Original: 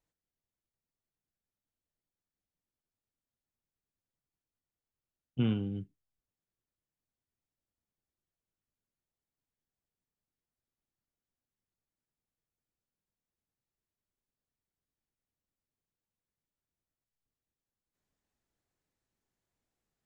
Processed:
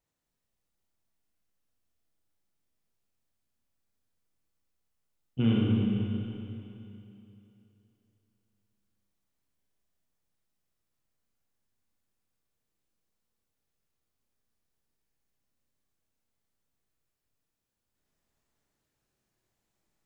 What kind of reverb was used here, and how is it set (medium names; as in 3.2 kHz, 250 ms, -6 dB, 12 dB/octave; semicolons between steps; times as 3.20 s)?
Schroeder reverb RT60 3 s, combs from 27 ms, DRR -4.5 dB; trim +1 dB